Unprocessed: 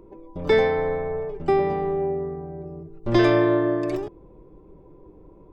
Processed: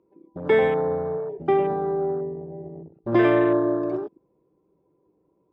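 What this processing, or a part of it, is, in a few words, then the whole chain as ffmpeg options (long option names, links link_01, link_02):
over-cleaned archive recording: -filter_complex "[0:a]highpass=140,lowpass=5200,afwtdn=0.0251,asettb=1/sr,asplit=3[link_01][link_02][link_03];[link_01]atrim=end=0.624[link_04];[link_02]atrim=start=0.62:end=1.18,asetpts=PTS-STARTPTS,afade=type=in:duration=0.004:curve=qsin,afade=type=out:start_time=0.556:duration=0.004:curve=qsin,bass=frequency=250:gain=6,treble=frequency=4000:gain=3[link_05];[link_03]atrim=start=1.176[link_06];[link_04][link_05]acrossfade=duration=0.004:curve1=hsin:curve2=qsin[link_07];[link_07][link_06]acrossfade=duration=0.004:curve1=qsin:curve2=hsin"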